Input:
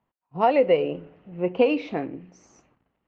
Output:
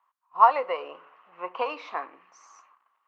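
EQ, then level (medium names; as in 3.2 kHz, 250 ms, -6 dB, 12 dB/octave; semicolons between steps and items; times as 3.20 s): dynamic bell 2.6 kHz, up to -8 dB, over -44 dBFS, Q 1.3; resonant high-pass 1.1 kHz, resonance Q 7; 0.0 dB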